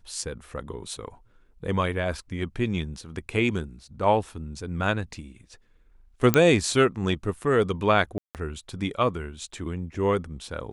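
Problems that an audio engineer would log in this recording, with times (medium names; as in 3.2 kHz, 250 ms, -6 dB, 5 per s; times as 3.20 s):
6.34 s: pop -4 dBFS
8.18–8.35 s: dropout 168 ms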